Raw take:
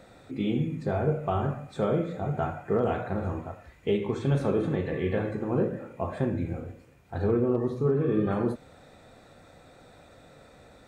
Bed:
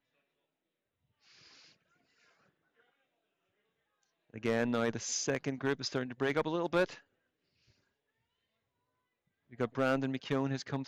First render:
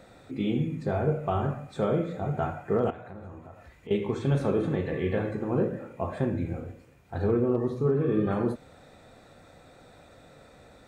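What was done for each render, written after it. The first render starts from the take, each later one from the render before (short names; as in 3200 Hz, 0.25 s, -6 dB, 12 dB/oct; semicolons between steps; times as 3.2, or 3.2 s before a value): 2.9–3.91 compressor 2.5:1, threshold -45 dBFS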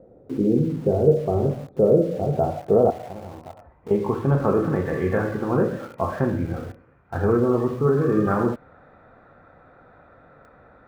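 low-pass sweep 470 Hz -> 1400 Hz, 1.82–4.87; in parallel at -3 dB: sample gate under -39.5 dBFS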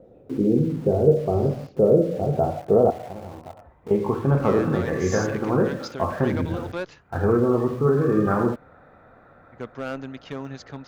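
add bed -1 dB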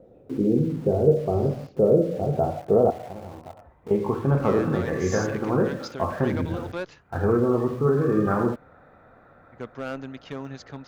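gain -1.5 dB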